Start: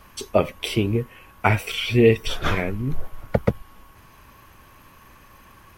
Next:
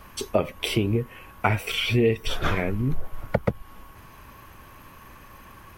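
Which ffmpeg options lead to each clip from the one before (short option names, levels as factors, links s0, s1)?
-af "equalizer=f=5600:w=0.55:g=-3,acompressor=threshold=0.0631:ratio=2.5,volume=1.41"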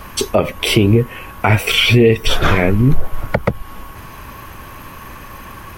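-af "alimiter=level_in=5.01:limit=0.891:release=50:level=0:latency=1,volume=0.891"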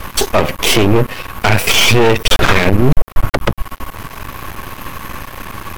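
-af "aeval=exprs='max(val(0),0)':c=same,apsyclip=3.76,volume=0.841"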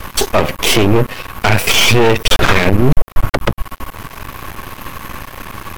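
-af "aeval=exprs='sgn(val(0))*max(abs(val(0))-0.0126,0)':c=same"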